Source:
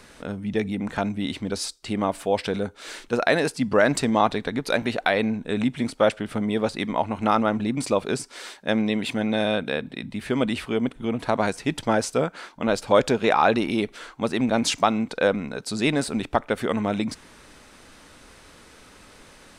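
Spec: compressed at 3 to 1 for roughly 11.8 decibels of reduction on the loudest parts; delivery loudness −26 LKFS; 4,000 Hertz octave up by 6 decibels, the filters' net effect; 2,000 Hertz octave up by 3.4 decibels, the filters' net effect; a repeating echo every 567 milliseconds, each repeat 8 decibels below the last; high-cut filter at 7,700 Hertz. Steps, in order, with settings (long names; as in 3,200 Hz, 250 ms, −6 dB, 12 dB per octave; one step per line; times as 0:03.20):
low-pass filter 7,700 Hz
parametric band 2,000 Hz +3 dB
parametric band 4,000 Hz +6.5 dB
downward compressor 3 to 1, threshold −29 dBFS
repeating echo 567 ms, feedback 40%, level −8 dB
level +5 dB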